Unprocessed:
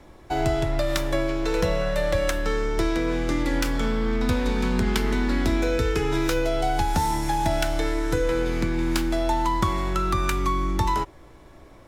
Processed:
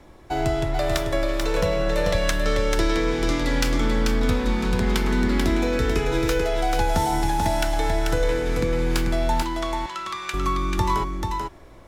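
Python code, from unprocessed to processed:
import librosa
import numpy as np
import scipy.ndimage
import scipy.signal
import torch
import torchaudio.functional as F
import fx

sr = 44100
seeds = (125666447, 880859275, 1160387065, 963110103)

y = fx.peak_eq(x, sr, hz=4500.0, db=5.0, octaves=1.7, at=(2.04, 3.76))
y = fx.bandpass_q(y, sr, hz=3300.0, q=0.69, at=(9.42, 10.34))
y = y + 10.0 ** (-4.0 / 20.0) * np.pad(y, (int(438 * sr / 1000.0), 0))[:len(y)]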